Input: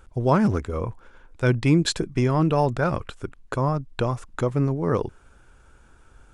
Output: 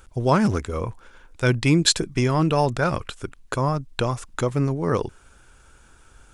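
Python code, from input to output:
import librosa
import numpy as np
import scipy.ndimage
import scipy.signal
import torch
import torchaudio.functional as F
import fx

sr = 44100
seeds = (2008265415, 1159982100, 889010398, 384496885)

y = fx.high_shelf(x, sr, hz=2300.0, db=9.5)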